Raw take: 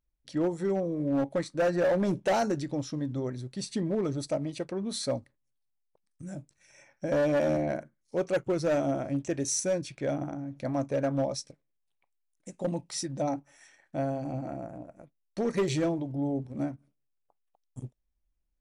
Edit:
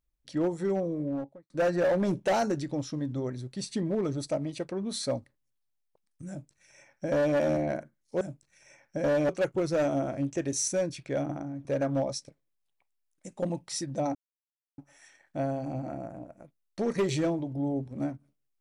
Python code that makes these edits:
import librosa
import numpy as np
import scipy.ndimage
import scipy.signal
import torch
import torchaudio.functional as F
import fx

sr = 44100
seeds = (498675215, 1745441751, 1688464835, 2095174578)

y = fx.studio_fade_out(x, sr, start_s=0.85, length_s=0.65)
y = fx.edit(y, sr, fx.duplicate(start_s=6.29, length_s=1.08, to_s=8.21),
    fx.cut(start_s=10.57, length_s=0.3),
    fx.insert_silence(at_s=13.37, length_s=0.63), tone=tone)